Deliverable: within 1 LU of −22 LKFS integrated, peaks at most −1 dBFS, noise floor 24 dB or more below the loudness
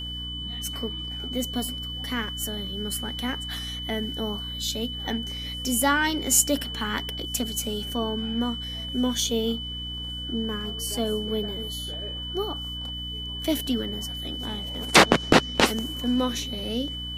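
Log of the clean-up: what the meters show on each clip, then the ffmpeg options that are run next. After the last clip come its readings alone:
mains hum 60 Hz; hum harmonics up to 300 Hz; level of the hum −35 dBFS; interfering tone 3,000 Hz; level of the tone −33 dBFS; integrated loudness −26.5 LKFS; sample peak −4.0 dBFS; target loudness −22.0 LKFS
→ -af "bandreject=frequency=60:width_type=h:width=6,bandreject=frequency=120:width_type=h:width=6,bandreject=frequency=180:width_type=h:width=6,bandreject=frequency=240:width_type=h:width=6,bandreject=frequency=300:width_type=h:width=6"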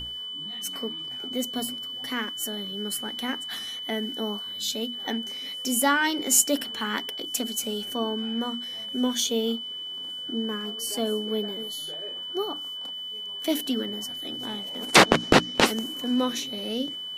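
mains hum none found; interfering tone 3,000 Hz; level of the tone −33 dBFS
→ -af "bandreject=frequency=3000:width=30"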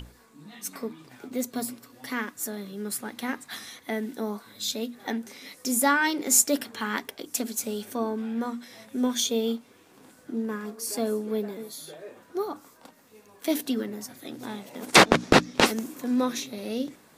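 interfering tone none found; integrated loudness −27.0 LKFS; sample peak −3.5 dBFS; target loudness −22.0 LKFS
→ -af "volume=5dB,alimiter=limit=-1dB:level=0:latency=1"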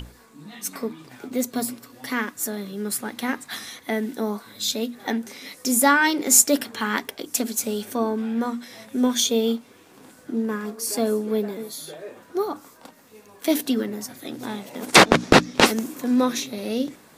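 integrated loudness −22.5 LKFS; sample peak −1.0 dBFS; background noise floor −52 dBFS

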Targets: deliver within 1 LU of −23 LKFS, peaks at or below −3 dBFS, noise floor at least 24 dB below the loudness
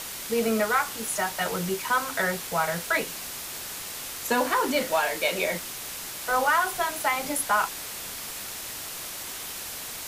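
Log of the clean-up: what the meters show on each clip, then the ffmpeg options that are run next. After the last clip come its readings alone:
background noise floor −37 dBFS; target noise floor −51 dBFS; integrated loudness −27.0 LKFS; sample peak −11.5 dBFS; target loudness −23.0 LKFS
→ -af "afftdn=noise_reduction=14:noise_floor=-37"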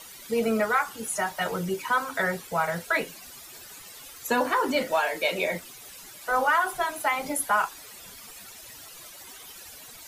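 background noise floor −46 dBFS; target noise floor −51 dBFS
→ -af "afftdn=noise_reduction=6:noise_floor=-46"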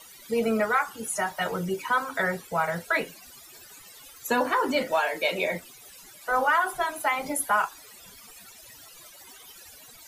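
background noise floor −49 dBFS; target noise floor −51 dBFS
→ -af "afftdn=noise_reduction=6:noise_floor=-49"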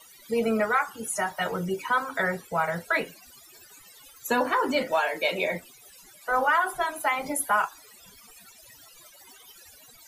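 background noise floor −53 dBFS; integrated loudness −26.5 LKFS; sample peak −12.0 dBFS; target loudness −23.0 LKFS
→ -af "volume=3.5dB"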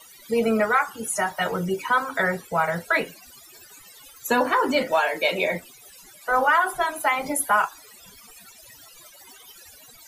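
integrated loudness −23.0 LKFS; sample peak −8.5 dBFS; background noise floor −49 dBFS

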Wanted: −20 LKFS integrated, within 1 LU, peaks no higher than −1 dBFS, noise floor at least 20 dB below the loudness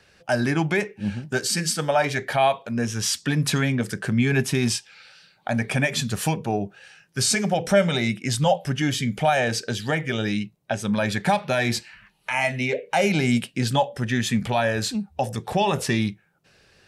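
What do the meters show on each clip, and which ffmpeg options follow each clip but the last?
integrated loudness −23.5 LKFS; sample peak −7.5 dBFS; target loudness −20.0 LKFS
→ -af "volume=3.5dB"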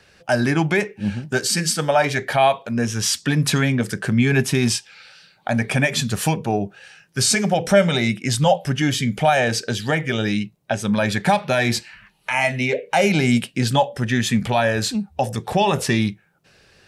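integrated loudness −20.0 LKFS; sample peak −4.0 dBFS; background noise floor −58 dBFS

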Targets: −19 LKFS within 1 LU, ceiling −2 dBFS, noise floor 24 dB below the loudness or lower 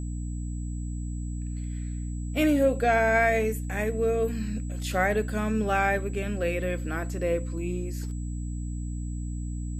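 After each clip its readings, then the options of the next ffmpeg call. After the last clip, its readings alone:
mains hum 60 Hz; hum harmonics up to 300 Hz; level of the hum −30 dBFS; interfering tone 7,800 Hz; level of the tone −50 dBFS; integrated loudness −28.0 LKFS; sample peak −11.0 dBFS; target loudness −19.0 LKFS
→ -af "bandreject=frequency=60:width_type=h:width=4,bandreject=frequency=120:width_type=h:width=4,bandreject=frequency=180:width_type=h:width=4,bandreject=frequency=240:width_type=h:width=4,bandreject=frequency=300:width_type=h:width=4"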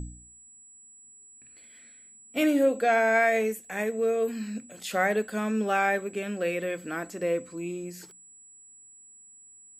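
mains hum none found; interfering tone 7,800 Hz; level of the tone −50 dBFS
→ -af "bandreject=frequency=7800:width=30"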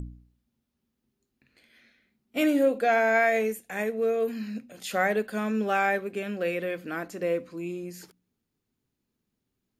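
interfering tone none found; integrated loudness −27.0 LKFS; sample peak −12.5 dBFS; target loudness −19.0 LKFS
→ -af "volume=8dB"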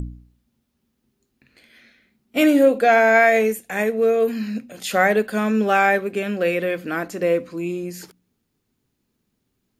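integrated loudness −19.0 LKFS; sample peak −4.5 dBFS; background noise floor −74 dBFS

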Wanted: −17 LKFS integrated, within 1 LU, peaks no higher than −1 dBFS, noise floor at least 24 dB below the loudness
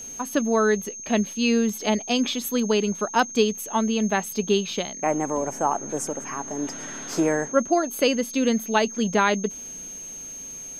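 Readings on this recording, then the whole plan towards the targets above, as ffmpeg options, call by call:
interfering tone 6,400 Hz; level of the tone −35 dBFS; integrated loudness −24.0 LKFS; sample peak −7.0 dBFS; target loudness −17.0 LKFS
→ -af "bandreject=frequency=6400:width=30"
-af "volume=7dB,alimiter=limit=-1dB:level=0:latency=1"

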